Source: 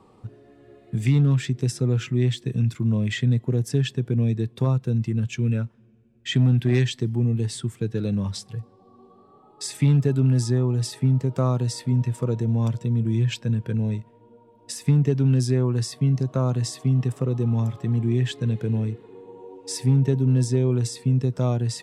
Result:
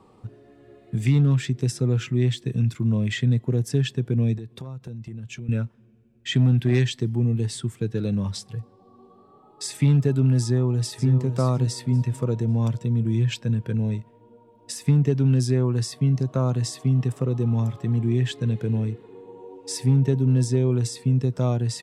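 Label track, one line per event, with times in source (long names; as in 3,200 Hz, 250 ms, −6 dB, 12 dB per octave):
4.380000	5.490000	downward compressor, threshold −33 dBFS
10.430000	11.110000	delay throw 550 ms, feedback 20%, level −9.5 dB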